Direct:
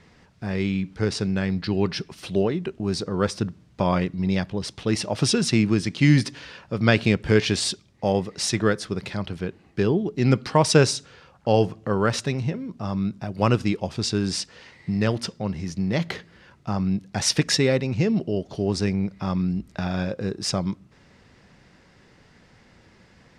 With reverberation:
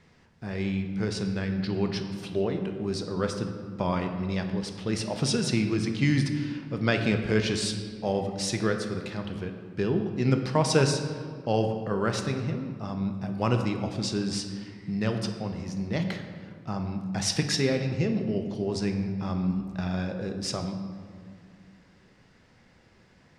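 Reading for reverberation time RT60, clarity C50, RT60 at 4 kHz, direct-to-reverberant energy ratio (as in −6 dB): 2.0 s, 7.0 dB, 1.1 s, 5.0 dB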